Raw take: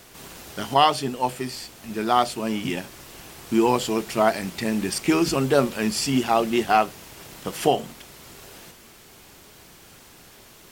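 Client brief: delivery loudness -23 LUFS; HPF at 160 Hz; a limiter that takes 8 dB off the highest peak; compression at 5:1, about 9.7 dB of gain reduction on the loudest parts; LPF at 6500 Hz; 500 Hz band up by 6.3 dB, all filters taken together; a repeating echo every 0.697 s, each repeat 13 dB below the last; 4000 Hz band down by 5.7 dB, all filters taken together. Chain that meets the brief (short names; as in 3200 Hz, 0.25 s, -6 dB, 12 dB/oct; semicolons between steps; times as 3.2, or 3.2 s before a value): HPF 160 Hz; LPF 6500 Hz; bell 500 Hz +8.5 dB; bell 4000 Hz -8 dB; compressor 5:1, threshold -18 dBFS; limiter -16 dBFS; feedback echo 0.697 s, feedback 22%, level -13 dB; gain +5 dB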